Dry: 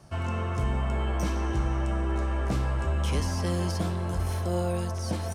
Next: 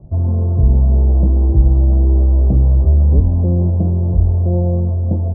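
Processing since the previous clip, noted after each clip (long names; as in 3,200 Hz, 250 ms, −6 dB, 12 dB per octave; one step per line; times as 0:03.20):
inverse Chebyshev low-pass filter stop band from 3,200 Hz, stop band 70 dB
spectral tilt −3.5 dB per octave
level +3.5 dB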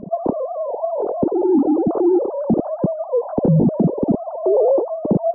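three sine waves on the formant tracks
brickwall limiter −6.5 dBFS, peak gain reduction 11 dB
level −2 dB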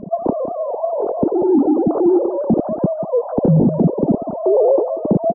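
single-tap delay 188 ms −12.5 dB
level +1.5 dB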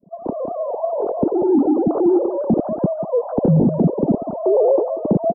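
fade in at the beginning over 0.51 s
level −1.5 dB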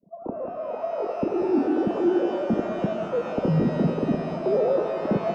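reverb with rising layers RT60 3.8 s, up +12 semitones, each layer −8 dB, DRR 6 dB
level −7.5 dB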